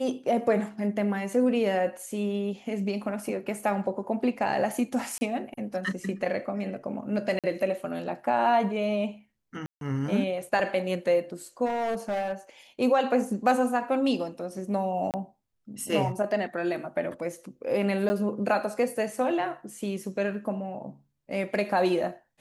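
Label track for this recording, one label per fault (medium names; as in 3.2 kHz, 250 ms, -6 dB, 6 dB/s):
5.180000	5.210000	dropout 30 ms
7.390000	7.440000	dropout 47 ms
9.660000	9.810000	dropout 152 ms
11.650000	12.330000	clipped -25 dBFS
15.110000	15.140000	dropout 28 ms
18.090000	18.100000	dropout 10 ms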